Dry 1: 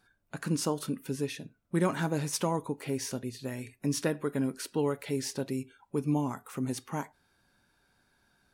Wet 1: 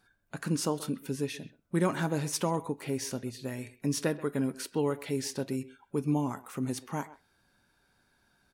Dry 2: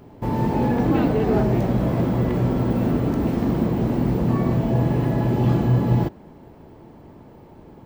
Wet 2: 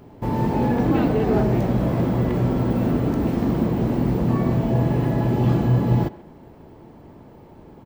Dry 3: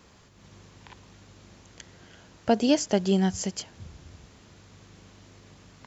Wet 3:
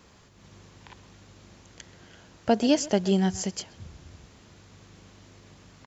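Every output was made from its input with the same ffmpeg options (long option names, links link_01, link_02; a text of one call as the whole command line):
ffmpeg -i in.wav -filter_complex "[0:a]asplit=2[link_01][link_02];[link_02]adelay=130,highpass=300,lowpass=3400,asoftclip=type=hard:threshold=-16dB,volume=-17dB[link_03];[link_01][link_03]amix=inputs=2:normalize=0" out.wav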